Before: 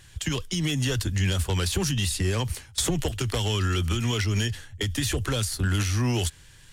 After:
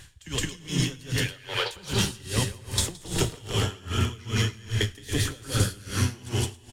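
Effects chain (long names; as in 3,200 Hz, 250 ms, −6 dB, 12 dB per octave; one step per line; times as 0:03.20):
0:01.05–0:01.71: Chebyshev band-pass filter 470–4,400 Hz, order 3
downward compressor, threshold −28 dBFS, peak gain reduction 7.5 dB
loudspeakers that aren't time-aligned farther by 58 metres −1 dB, 95 metres −5 dB
reverb whose tail is shaped and stops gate 450 ms flat, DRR 3.5 dB
tremolo with a sine in dB 2.5 Hz, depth 24 dB
level +5 dB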